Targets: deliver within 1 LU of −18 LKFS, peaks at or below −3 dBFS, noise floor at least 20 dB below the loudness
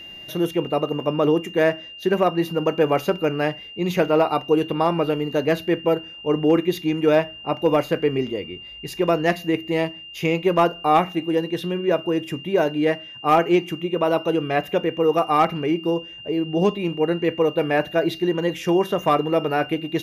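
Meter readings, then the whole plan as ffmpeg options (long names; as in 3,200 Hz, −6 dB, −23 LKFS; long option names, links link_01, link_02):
interfering tone 2,800 Hz; level of the tone −37 dBFS; integrated loudness −21.5 LKFS; sample peak −8.0 dBFS; target loudness −18.0 LKFS
→ -af "bandreject=frequency=2800:width=30"
-af "volume=3.5dB"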